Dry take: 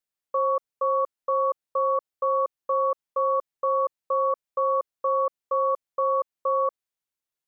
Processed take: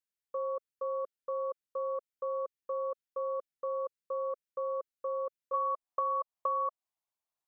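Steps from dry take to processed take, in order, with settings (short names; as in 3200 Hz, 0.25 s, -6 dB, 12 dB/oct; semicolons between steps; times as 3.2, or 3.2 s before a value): band shelf 860 Hz -8.5 dB 1.1 oct, from 5.53 s +9.5 dB; compressor, threshold -23 dBFS, peak gain reduction 8.5 dB; gain -6.5 dB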